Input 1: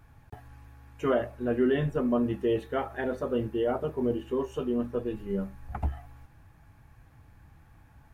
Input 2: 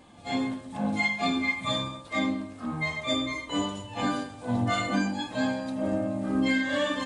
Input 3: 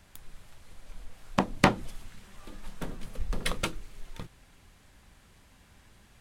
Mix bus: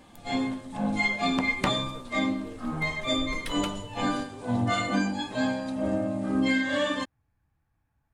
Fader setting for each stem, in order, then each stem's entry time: -19.0 dB, +0.5 dB, -6.5 dB; 0.00 s, 0.00 s, 0.00 s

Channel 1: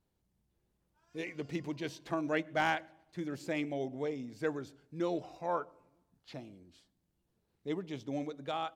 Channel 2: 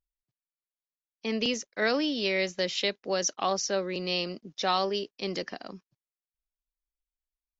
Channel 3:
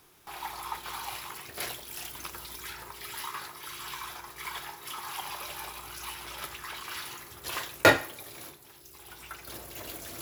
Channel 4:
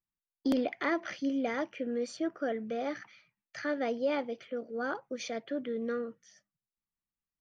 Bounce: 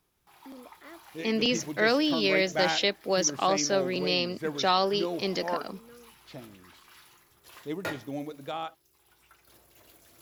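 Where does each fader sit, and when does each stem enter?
+1.5 dB, +2.5 dB, -16.0 dB, -18.5 dB; 0.00 s, 0.00 s, 0.00 s, 0.00 s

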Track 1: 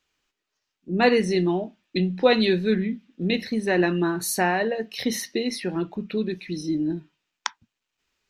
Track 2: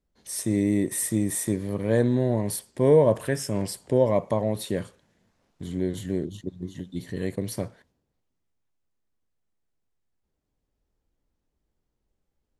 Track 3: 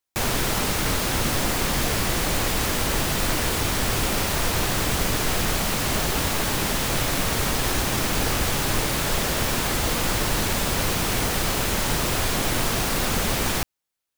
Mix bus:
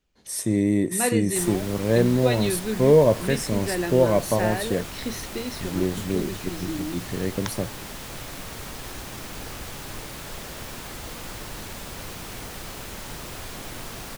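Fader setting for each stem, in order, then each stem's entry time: -6.5 dB, +2.0 dB, -13.0 dB; 0.00 s, 0.00 s, 1.20 s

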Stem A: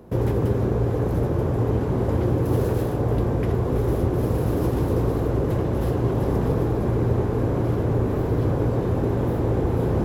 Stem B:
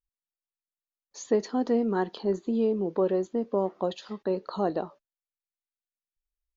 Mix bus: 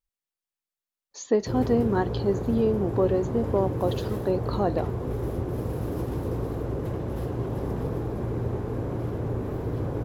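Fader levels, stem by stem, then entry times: -7.5 dB, +2.0 dB; 1.35 s, 0.00 s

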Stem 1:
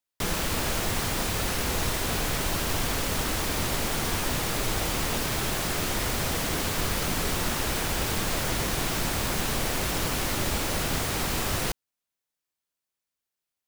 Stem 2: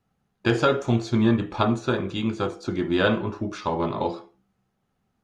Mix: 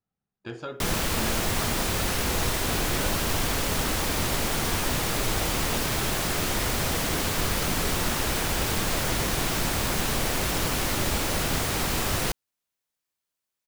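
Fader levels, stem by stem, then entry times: +1.5 dB, -16.0 dB; 0.60 s, 0.00 s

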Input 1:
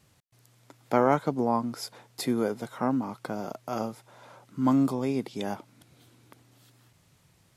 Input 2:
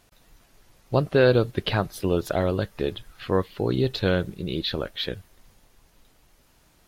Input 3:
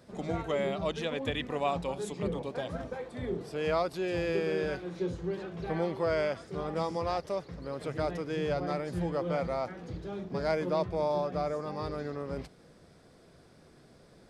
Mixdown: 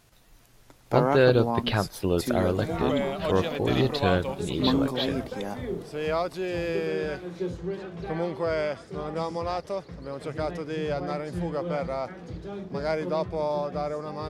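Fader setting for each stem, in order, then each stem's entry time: -2.0 dB, -1.5 dB, +2.0 dB; 0.00 s, 0.00 s, 2.40 s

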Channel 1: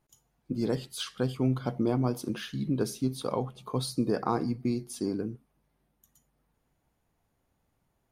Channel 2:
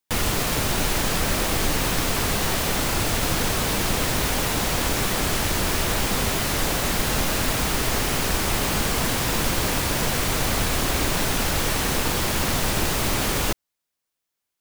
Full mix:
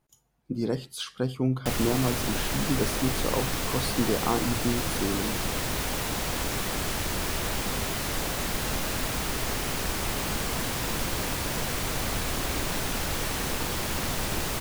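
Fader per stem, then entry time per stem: +1.0 dB, -6.5 dB; 0.00 s, 1.55 s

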